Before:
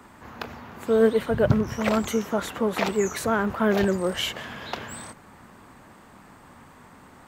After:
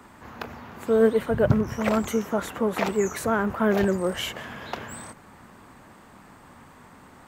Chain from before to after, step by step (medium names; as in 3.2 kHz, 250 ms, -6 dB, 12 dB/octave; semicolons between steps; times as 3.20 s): dynamic bell 4 kHz, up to -5 dB, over -49 dBFS, Q 1.1